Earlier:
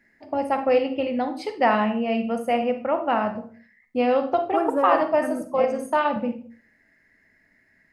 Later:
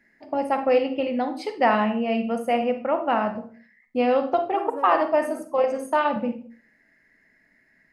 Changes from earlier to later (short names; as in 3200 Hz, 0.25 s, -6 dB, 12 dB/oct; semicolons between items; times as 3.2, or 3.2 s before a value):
second voice -10.0 dB; master: add bell 94 Hz -14 dB 0.22 oct